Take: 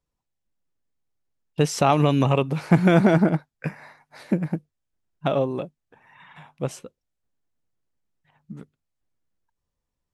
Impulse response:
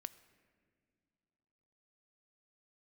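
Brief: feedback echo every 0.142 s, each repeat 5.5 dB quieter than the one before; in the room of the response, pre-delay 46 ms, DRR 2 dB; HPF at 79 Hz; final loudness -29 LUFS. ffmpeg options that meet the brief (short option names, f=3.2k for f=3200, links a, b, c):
-filter_complex "[0:a]highpass=79,aecho=1:1:142|284|426|568|710|852|994:0.531|0.281|0.149|0.079|0.0419|0.0222|0.0118,asplit=2[a][b];[1:a]atrim=start_sample=2205,adelay=46[c];[b][c]afir=irnorm=-1:irlink=0,volume=2.5dB[d];[a][d]amix=inputs=2:normalize=0,volume=-10dB"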